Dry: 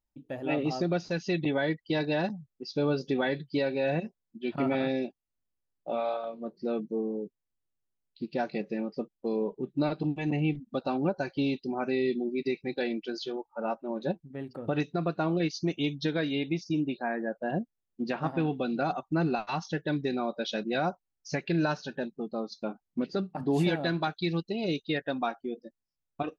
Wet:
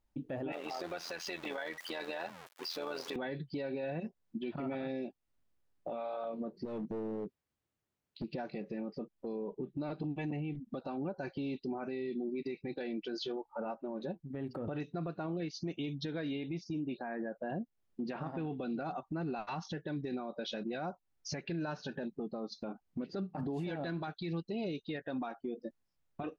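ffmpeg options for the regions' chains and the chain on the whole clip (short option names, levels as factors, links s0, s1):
-filter_complex "[0:a]asettb=1/sr,asplit=3[s0][s1][s2];[s0]atrim=end=0.524[s3];[s1]atrim=start=0.52:end=3.16,asetpts=PTS-STARTPTS,afade=t=in:d=0.004:c=qsin,afade=t=out:st=2.636:d=0.004:c=qsin,aeval=exprs='val(0)+0.5*0.0112*sgn(val(0))':c=same,highpass=740,tremolo=f=84:d=0.71[s4];[s2]atrim=start=3.156[s5];[s3][s4]acrossfade=d=0.004:c1=hsin:c2=qsin[s6];[s6][s5]acrossfade=d=0.004:c1=qsin:c2=hsin,asettb=1/sr,asplit=3[s7][s8][s9];[s7]atrim=end=6.654[s10];[s8]atrim=start=6.65:end=8.24,asetpts=PTS-STARTPTS,afade=t=in:d=0.004:c=qsin,afade=t=out:st=1.586:d=0.004:c=qsin,highpass=50,acompressor=threshold=0.00631:ratio=2.5:attack=3.2:release=140:knee=1:detection=peak,aeval=exprs='clip(val(0),-1,0.00708)':c=same[s11];[s9]atrim=start=8.236[s12];[s10][s11]acrossfade=d=0.004:c1=hsin:c2=qsin[s13];[s13][s12]acrossfade=d=0.004:c1=qsin:c2=hsin,highshelf=f=3900:g=-10,acompressor=threshold=0.01:ratio=6,alimiter=level_in=5.62:limit=0.0631:level=0:latency=1:release=25,volume=0.178,volume=2.66"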